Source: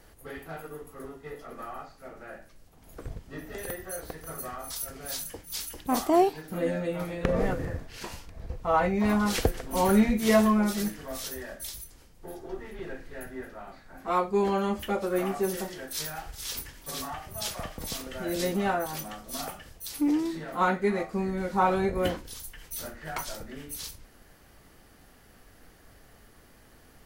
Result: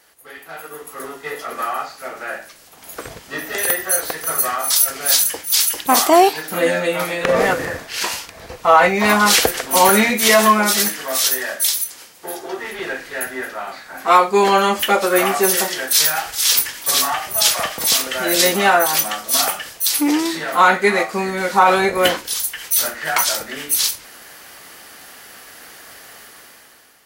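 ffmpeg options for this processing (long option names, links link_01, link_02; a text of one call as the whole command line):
ffmpeg -i in.wav -filter_complex "[0:a]asettb=1/sr,asplit=3[link_01][link_02][link_03];[link_01]atrim=end=9.894[link_04];[link_02]atrim=start=9.89:end=12.64,asetpts=PTS-STARTPTS,afade=type=in:duration=0.004:curve=qsin,afade=type=out:start_time=2.746:duration=0.004:curve=qsin,highpass=frequency=150:poles=1[link_05];[link_03]atrim=start=12.636[link_06];[link_04][link_05]acrossfade=duration=0.004:curve1=hsin:curve2=qsin[link_07];[link_07][link_06]acrossfade=duration=0.004:curve1=qsin:curve2=hsin,highpass=frequency=1400:poles=1,dynaudnorm=framelen=230:gausssize=7:maxgain=14dB,alimiter=level_in=8.5dB:limit=-1dB:release=50:level=0:latency=1,volume=-1dB" out.wav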